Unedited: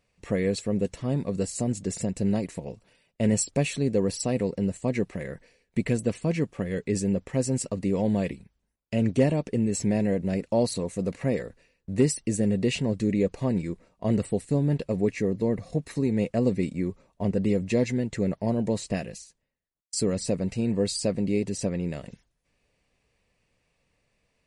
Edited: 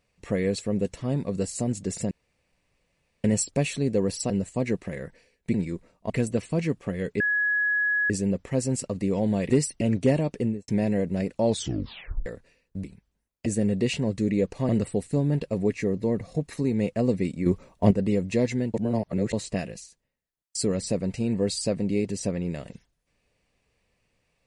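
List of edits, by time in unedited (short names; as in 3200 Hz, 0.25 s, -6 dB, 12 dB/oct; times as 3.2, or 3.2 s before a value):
2.11–3.24 room tone
4.3–4.58 cut
6.92 add tone 1680 Hz -21 dBFS 0.90 s
8.32–8.94 swap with 11.97–12.28
9.55–9.81 studio fade out
10.58 tape stop 0.81 s
13.51–14.07 move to 5.82
16.84–17.29 gain +8.5 dB
18.12–18.71 reverse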